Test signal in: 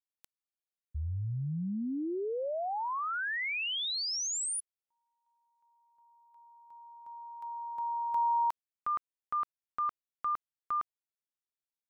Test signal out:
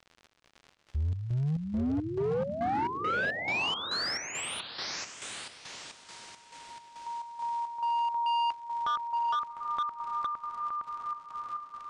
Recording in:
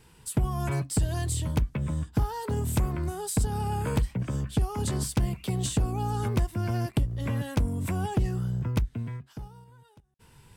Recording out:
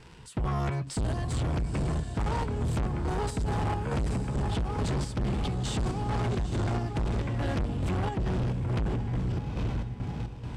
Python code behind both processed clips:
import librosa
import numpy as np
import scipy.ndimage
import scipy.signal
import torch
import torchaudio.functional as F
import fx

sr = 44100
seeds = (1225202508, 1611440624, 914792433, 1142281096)

p1 = fx.level_steps(x, sr, step_db=24)
p2 = x + (p1 * librosa.db_to_amplitude(-2.0))
p3 = fx.dmg_crackle(p2, sr, seeds[0], per_s=110.0, level_db=-41.0)
p4 = p3 + fx.echo_diffused(p3, sr, ms=822, feedback_pct=40, wet_db=-6, dry=0)
p5 = fx.chopper(p4, sr, hz=2.3, depth_pct=60, duty_pct=60)
p6 = np.clip(10.0 ** (31.0 / 20.0) * p5, -1.0, 1.0) / 10.0 ** (31.0 / 20.0)
p7 = fx.air_absorb(p6, sr, metres=99.0)
y = p7 * librosa.db_to_amplitude(5.0)